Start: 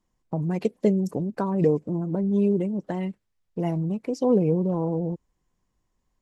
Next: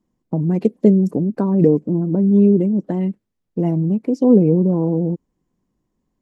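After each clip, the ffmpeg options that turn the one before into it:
ffmpeg -i in.wav -af "equalizer=frequency=250:width=0.56:gain=14.5,volume=-3.5dB" out.wav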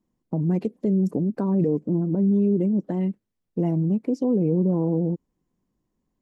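ffmpeg -i in.wav -af "alimiter=limit=-10.5dB:level=0:latency=1:release=88,volume=-4dB" out.wav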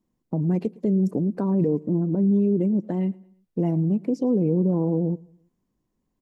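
ffmpeg -i in.wav -af "aecho=1:1:111|222|333:0.0708|0.0283|0.0113" out.wav

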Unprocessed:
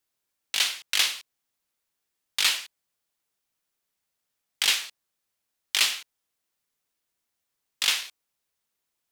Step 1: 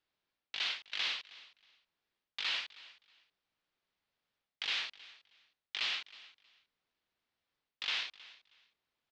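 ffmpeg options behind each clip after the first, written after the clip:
ffmpeg -i in.wav -af "lowpass=frequency=4300:width=0.5412,lowpass=frequency=4300:width=1.3066,areverse,acompressor=threshold=-33dB:ratio=8,areverse,aecho=1:1:317|634:0.106|0.0222" out.wav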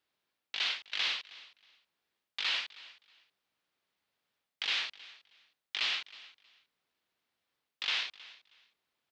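ffmpeg -i in.wav -af "highpass=frequency=120:poles=1,volume=3dB" out.wav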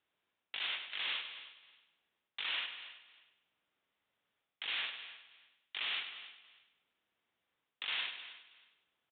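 ffmpeg -i in.wav -filter_complex "[0:a]alimiter=level_in=3.5dB:limit=-24dB:level=0:latency=1:release=30,volume=-3.5dB,asplit=2[link_01][link_02];[link_02]aecho=0:1:100|200|300|400|500:0.355|0.163|0.0751|0.0345|0.0159[link_03];[link_01][link_03]amix=inputs=2:normalize=0,aresample=8000,aresample=44100" out.wav

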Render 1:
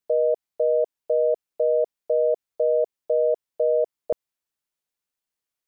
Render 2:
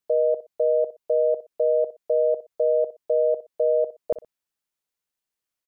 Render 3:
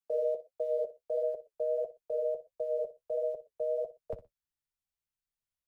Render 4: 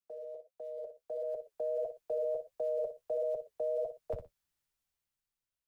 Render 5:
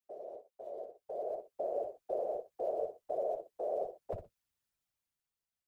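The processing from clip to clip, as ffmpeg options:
ffmpeg -i in.wav -af "aecho=1:1:61|122:0.188|0.0433" out.wav
ffmpeg -i in.wav -filter_complex "[0:a]asubboost=boost=8:cutoff=120,acrossover=split=130|250|310[link_01][link_02][link_03][link_04];[link_02]acrusher=bits=3:mode=log:mix=0:aa=0.000001[link_05];[link_01][link_05][link_03][link_04]amix=inputs=4:normalize=0,flanger=delay=7.4:depth=5.9:regen=-32:speed=1.5:shape=sinusoidal,volume=-6dB" out.wav
ffmpeg -i in.wav -filter_complex "[0:a]acrossover=split=160|470[link_01][link_02][link_03];[link_02]acompressor=threshold=-50dB:ratio=6[link_04];[link_01][link_04][link_03]amix=inputs=3:normalize=0,alimiter=level_in=11.5dB:limit=-24dB:level=0:latency=1:release=20,volume=-11.5dB,dynaudnorm=framelen=270:gausssize=9:maxgain=11dB,volume=-3dB" out.wav
ffmpeg -i in.wav -af "afftfilt=real='hypot(re,im)*cos(2*PI*random(0))':imag='hypot(re,im)*sin(2*PI*random(1))':win_size=512:overlap=0.75,volume=4dB" out.wav

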